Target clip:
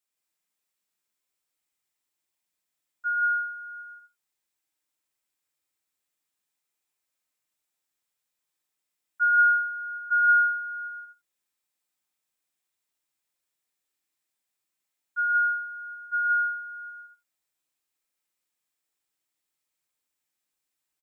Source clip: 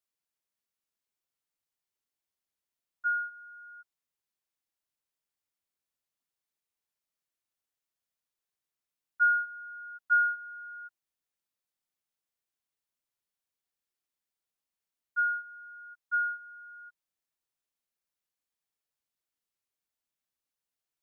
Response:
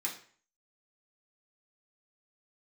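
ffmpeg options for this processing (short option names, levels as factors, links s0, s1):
-filter_complex "[0:a]aecho=1:1:119.5|169.1|242:0.501|0.794|0.501,asplit=2[s0][s1];[1:a]atrim=start_sample=2205,afade=t=out:st=0.14:d=0.01,atrim=end_sample=6615[s2];[s1][s2]afir=irnorm=-1:irlink=0,volume=0.562[s3];[s0][s3]amix=inputs=2:normalize=0"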